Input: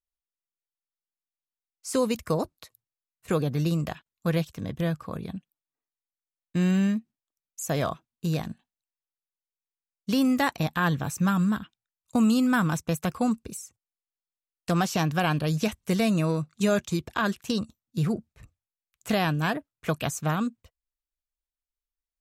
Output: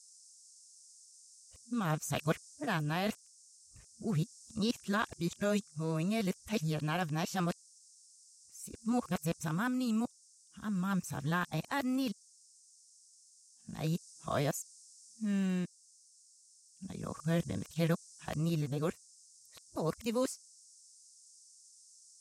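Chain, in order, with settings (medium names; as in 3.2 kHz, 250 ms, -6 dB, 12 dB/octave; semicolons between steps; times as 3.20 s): reverse the whole clip; band noise 5.1–9.4 kHz -52 dBFS; gain riding within 4 dB 0.5 s; trim -7.5 dB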